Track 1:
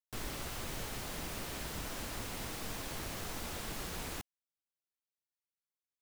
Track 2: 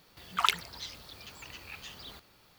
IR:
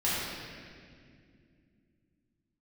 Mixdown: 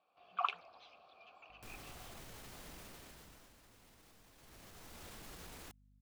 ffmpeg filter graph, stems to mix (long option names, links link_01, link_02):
-filter_complex "[0:a]alimiter=level_in=15dB:limit=-24dB:level=0:latency=1,volume=-15dB,aeval=exprs='val(0)+0.000794*(sin(2*PI*50*n/s)+sin(2*PI*2*50*n/s)/2+sin(2*PI*3*50*n/s)/3+sin(2*PI*4*50*n/s)/4+sin(2*PI*5*50*n/s)/5)':channel_layout=same,adelay=1500,volume=2.5dB,afade=type=out:start_time=2.76:duration=0.77:silence=0.266073,afade=type=in:start_time=4.34:duration=0.75:silence=0.251189[link_01];[1:a]equalizer=frequency=11000:width=0.56:gain=-14,flanger=delay=3.2:depth=2.4:regen=-71:speed=1.4:shape=triangular,asplit=3[link_02][link_03][link_04];[link_02]bandpass=frequency=730:width_type=q:width=8,volume=0dB[link_05];[link_03]bandpass=frequency=1090:width_type=q:width=8,volume=-6dB[link_06];[link_04]bandpass=frequency=2440:width_type=q:width=8,volume=-9dB[link_07];[link_05][link_06][link_07]amix=inputs=3:normalize=0,volume=2.5dB[link_08];[link_01][link_08]amix=inputs=2:normalize=0,dynaudnorm=framelen=130:gausssize=3:maxgain=5dB"